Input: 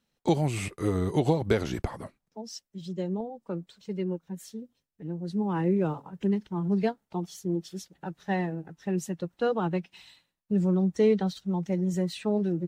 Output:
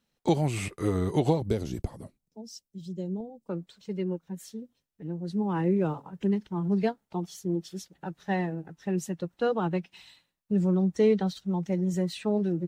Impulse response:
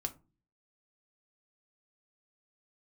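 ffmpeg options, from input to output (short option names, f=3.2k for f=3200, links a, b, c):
-filter_complex "[0:a]asettb=1/sr,asplit=3[a][b][c];[a]atrim=end=1.404[d];[b]atrim=start=1.4:end=3.49,asetpts=PTS-STARTPTS,afade=t=in:d=0.004:c=qsin,afade=t=out:st=2.086:d=0.004:c=qsin,equalizer=f=1.5k:w=0.54:g=-15[e];[c]atrim=start=3.486[f];[d][e]acrossfade=d=0.004:c1=hsin:c2=qsin[g];[g][f]acrossfade=d=0.004:c1=qsin:c2=hsin"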